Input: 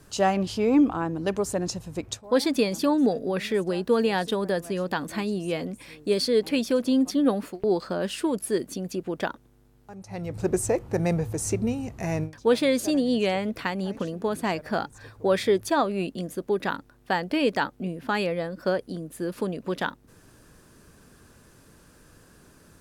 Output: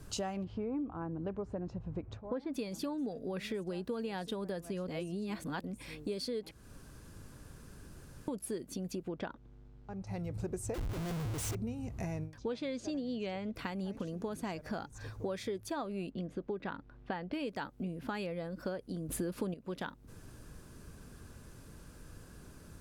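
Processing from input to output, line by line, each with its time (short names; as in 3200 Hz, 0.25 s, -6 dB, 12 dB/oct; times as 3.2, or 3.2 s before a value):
0.44–2.54 LPF 1600 Hz
4.88–5.64 reverse
6.51–8.28 room tone
9.08–10.07 air absorption 130 m
10.74–11.55 Schmitt trigger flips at -41.5 dBFS
12.38–13.55 LPF 6800 Hz 24 dB/oct
14.07–15.56 bell 6200 Hz +6 dB 0.38 oct
16.1–17.33 LPF 3200 Hz
19.09–19.54 gain +12 dB
whole clip: low shelf 140 Hz +10 dB; notch 1800 Hz, Q 23; compressor 5:1, threshold -34 dBFS; gain -2.5 dB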